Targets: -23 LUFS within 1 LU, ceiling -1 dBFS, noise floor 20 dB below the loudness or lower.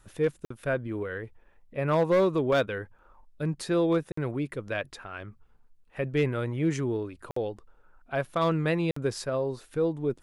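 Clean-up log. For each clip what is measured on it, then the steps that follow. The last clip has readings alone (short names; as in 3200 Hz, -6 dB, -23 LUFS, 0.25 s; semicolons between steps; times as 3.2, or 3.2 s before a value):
clipped 0.4%; flat tops at -17.5 dBFS; dropouts 4; longest dropout 54 ms; loudness -29.0 LUFS; peak -17.5 dBFS; loudness target -23.0 LUFS
-> clip repair -17.5 dBFS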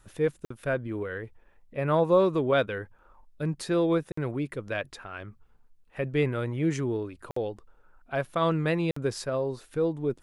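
clipped 0.0%; dropouts 4; longest dropout 54 ms
-> interpolate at 0.45/4.12/7.31/8.91, 54 ms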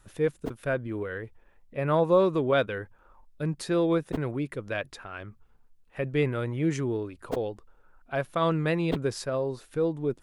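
dropouts 0; loudness -28.5 LUFS; peak -12.0 dBFS; loudness target -23.0 LUFS
-> gain +5.5 dB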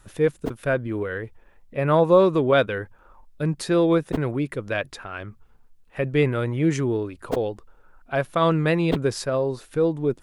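loudness -23.0 LUFS; peak -6.5 dBFS; noise floor -55 dBFS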